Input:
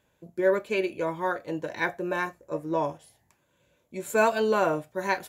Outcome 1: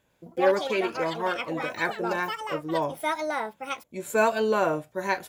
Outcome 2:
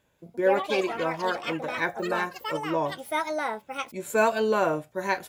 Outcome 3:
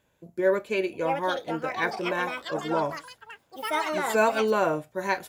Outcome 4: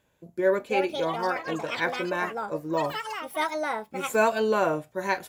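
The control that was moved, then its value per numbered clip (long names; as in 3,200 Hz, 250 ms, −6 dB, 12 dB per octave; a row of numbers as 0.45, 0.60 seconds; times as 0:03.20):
delay with pitch and tempo change per echo, delay time: 103, 186, 777, 434 milliseconds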